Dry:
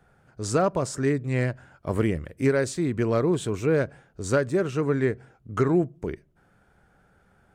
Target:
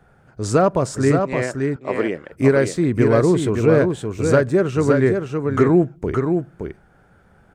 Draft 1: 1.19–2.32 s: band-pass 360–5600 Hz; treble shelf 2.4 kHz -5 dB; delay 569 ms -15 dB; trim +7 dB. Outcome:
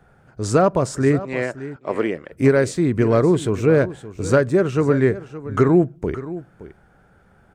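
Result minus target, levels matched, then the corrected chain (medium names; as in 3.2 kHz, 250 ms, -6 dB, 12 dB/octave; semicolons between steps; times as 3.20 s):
echo-to-direct -10 dB
1.19–2.32 s: band-pass 360–5600 Hz; treble shelf 2.4 kHz -5 dB; delay 569 ms -5 dB; trim +7 dB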